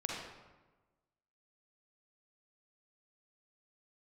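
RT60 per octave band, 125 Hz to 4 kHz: 1.4, 1.3, 1.2, 1.2, 1.0, 0.75 seconds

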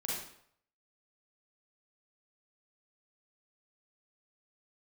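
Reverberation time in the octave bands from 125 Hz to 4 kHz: 0.65, 0.55, 0.65, 0.65, 0.60, 0.55 seconds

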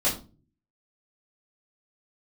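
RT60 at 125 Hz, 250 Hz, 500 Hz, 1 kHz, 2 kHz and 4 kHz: 0.80, 0.60, 0.40, 0.30, 0.25, 0.25 seconds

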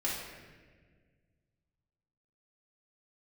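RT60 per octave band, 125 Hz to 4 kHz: 2.7, 2.3, 1.9, 1.3, 1.5, 1.1 seconds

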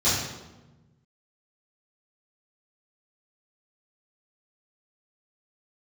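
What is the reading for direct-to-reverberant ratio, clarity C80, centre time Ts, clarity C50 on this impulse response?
−13.5 dB, 3.5 dB, 71 ms, 0.5 dB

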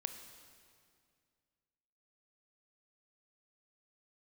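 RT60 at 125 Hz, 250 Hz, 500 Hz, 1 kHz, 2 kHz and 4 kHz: 2.6, 2.5, 2.3, 2.1, 2.0, 1.9 seconds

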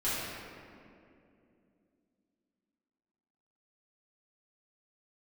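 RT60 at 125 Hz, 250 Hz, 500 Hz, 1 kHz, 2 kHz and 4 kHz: 3.2, 3.8, 3.0, 2.2, 2.0, 1.4 seconds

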